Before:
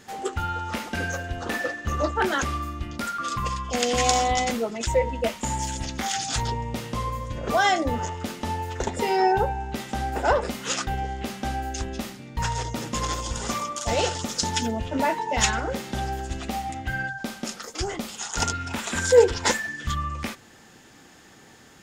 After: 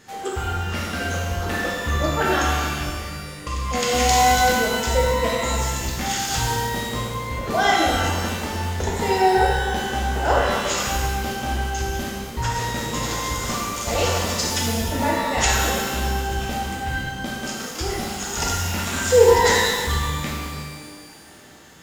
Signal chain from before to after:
0:02.87–0:03.47: pair of resonant band-passes 980 Hz, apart 1.9 octaves
reverb with rising layers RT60 1.7 s, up +12 semitones, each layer −8 dB, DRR −3.5 dB
level −1.5 dB

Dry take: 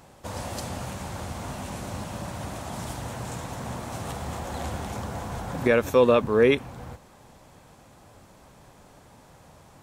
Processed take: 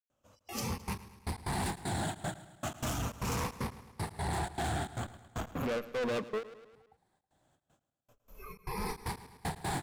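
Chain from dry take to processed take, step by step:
rippled gain that drifts along the octave scale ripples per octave 0.86, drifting −0.38 Hz, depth 8 dB
camcorder AGC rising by 11 dB per second
noise reduction from a noise print of the clip's start 24 dB
gate pattern ".xxx.xxx.x...x" 154 BPM −60 dB
0:04.92–0:06.03: tube saturation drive 23 dB, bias 0.55
gain into a clipping stage and back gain 24.5 dB
repeating echo 107 ms, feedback 56%, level −17 dB
every ending faded ahead of time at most 250 dB per second
level −6.5 dB

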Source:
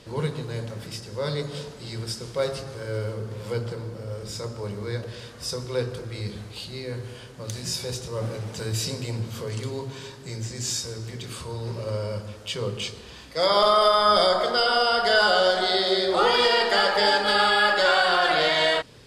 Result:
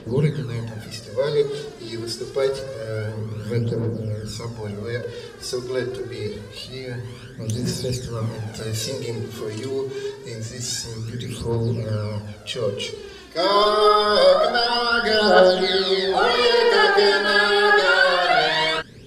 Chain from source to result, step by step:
hollow resonant body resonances 220/390/1,600 Hz, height 8 dB, ringing for 30 ms
phase shifter 0.26 Hz, delay 3.1 ms, feedback 64%
level −1 dB

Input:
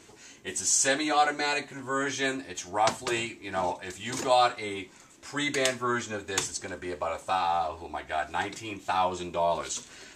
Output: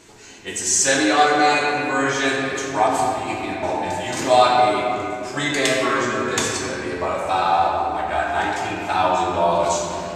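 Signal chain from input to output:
0:02.87–0:03.63: compressor whose output falls as the input rises −41 dBFS, ratio −1
convolution reverb RT60 2.9 s, pre-delay 6 ms, DRR −4 dB
level +4 dB

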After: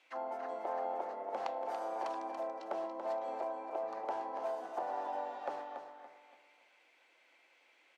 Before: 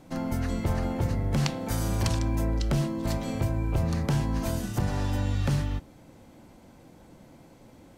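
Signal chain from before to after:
envelope filter 760–2,800 Hz, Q 3.1, down, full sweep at −29 dBFS
high-pass filter 340 Hz 24 dB per octave
repeating echo 284 ms, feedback 34%, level −8 dB
level +3 dB

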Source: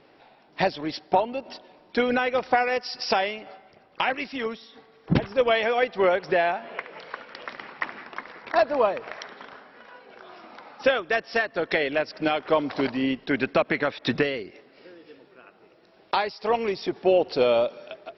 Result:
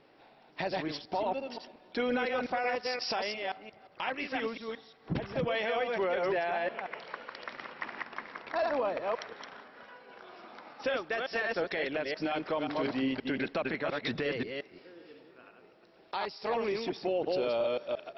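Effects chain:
delay that plays each chunk backwards 176 ms, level −4 dB
brickwall limiter −17 dBFS, peak gain reduction 10 dB
level −5.5 dB

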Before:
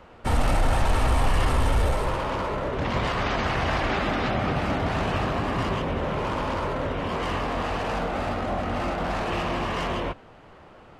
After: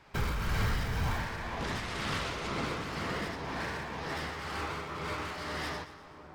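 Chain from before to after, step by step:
wrong playback speed 45 rpm record played at 78 rpm
shaped tremolo triangle 2 Hz, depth 50%
echo with a time of its own for lows and highs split 1,300 Hz, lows 696 ms, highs 122 ms, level −13 dB
level −8 dB

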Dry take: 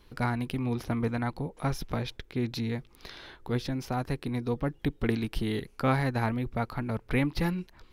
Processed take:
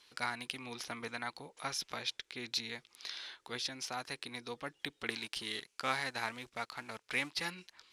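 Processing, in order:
0:05.10–0:07.46: mu-law and A-law mismatch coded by A
meter weighting curve ITU-R 468
level −6 dB

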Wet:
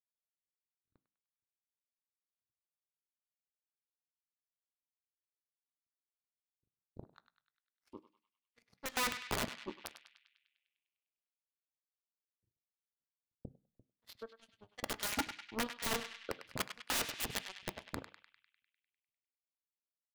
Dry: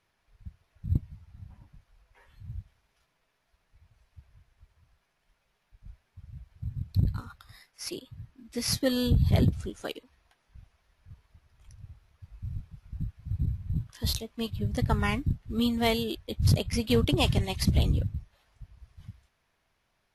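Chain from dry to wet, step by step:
flanger 0.15 Hz, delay 7.1 ms, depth 6.7 ms, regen +75%
auto-filter band-pass saw up 2.9 Hz 260–2,400 Hz
wrap-around overflow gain 34 dB
power curve on the samples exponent 3
feedback echo with a band-pass in the loop 100 ms, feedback 67%, band-pass 2,600 Hz, level −7.5 dB
on a send at −15 dB: convolution reverb RT60 0.35 s, pre-delay 3 ms
on the sum: level +8.5 dB

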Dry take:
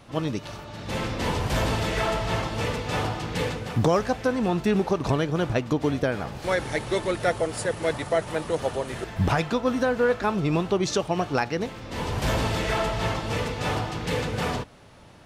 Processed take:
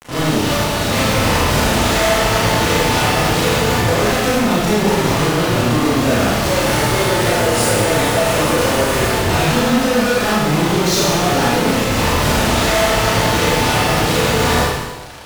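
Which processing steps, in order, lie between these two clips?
fuzz pedal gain 50 dB, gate −43 dBFS
four-comb reverb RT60 1.2 s, combs from 26 ms, DRR −7.5 dB
level −8.5 dB

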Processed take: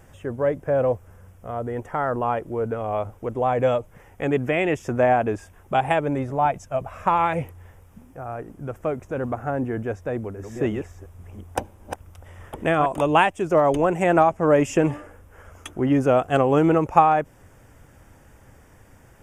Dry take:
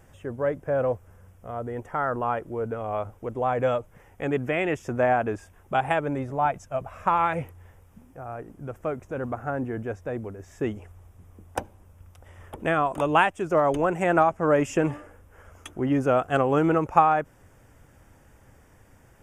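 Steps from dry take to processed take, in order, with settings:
0:10.02–0:12.86: delay that plays each chunk backwards 347 ms, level −6.5 dB
dynamic equaliser 1,400 Hz, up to −5 dB, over −40 dBFS, Q 2.2
level +4 dB

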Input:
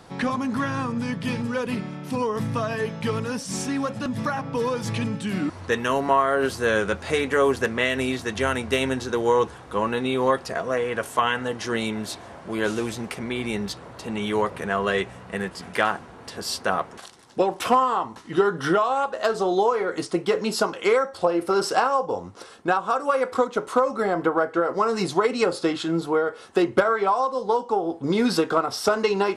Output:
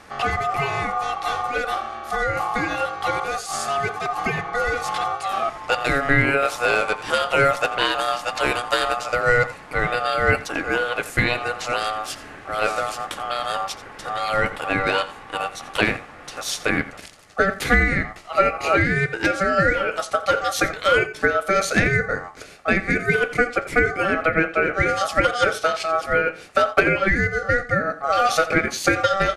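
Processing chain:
single-tap delay 86 ms −16 dB
ring modulation 970 Hz
level +5 dB

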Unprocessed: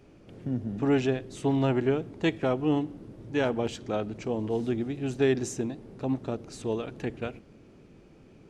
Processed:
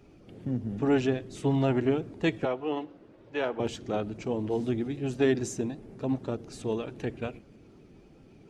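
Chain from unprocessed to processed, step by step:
spectral magnitudes quantised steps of 15 dB
0:02.45–0:03.60: three-way crossover with the lows and the highs turned down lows −15 dB, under 380 Hz, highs −15 dB, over 4,600 Hz

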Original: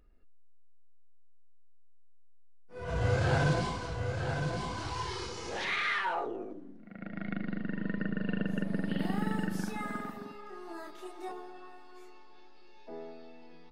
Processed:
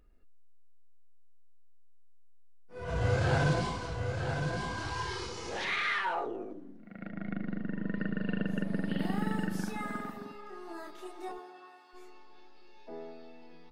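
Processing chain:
0:04.45–0:05.17: steady tone 1,600 Hz −43 dBFS
0:07.11–0:07.94: high-shelf EQ 2,300 Hz −10 dB
0:11.37–0:11.93: high-pass filter 310 Hz → 820 Hz 6 dB per octave

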